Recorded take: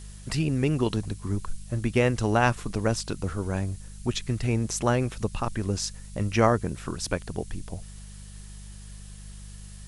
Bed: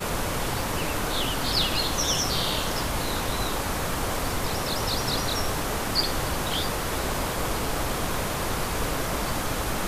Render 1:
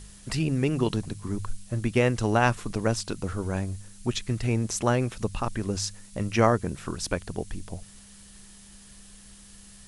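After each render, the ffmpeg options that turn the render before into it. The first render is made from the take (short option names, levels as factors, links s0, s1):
-af "bandreject=f=50:t=h:w=4,bandreject=f=100:t=h:w=4,bandreject=f=150:t=h:w=4"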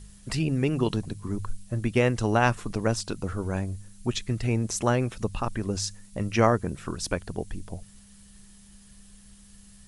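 -af "afftdn=nr=6:nf=-50"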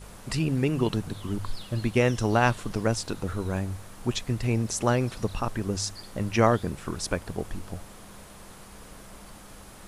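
-filter_complex "[1:a]volume=0.0944[s0];[0:a][s0]amix=inputs=2:normalize=0"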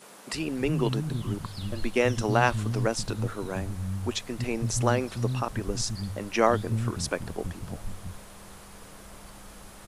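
-filter_complex "[0:a]acrossover=split=210[s0][s1];[s0]adelay=330[s2];[s2][s1]amix=inputs=2:normalize=0"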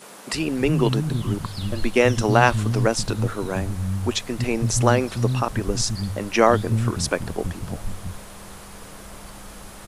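-af "volume=2.11,alimiter=limit=0.891:level=0:latency=1"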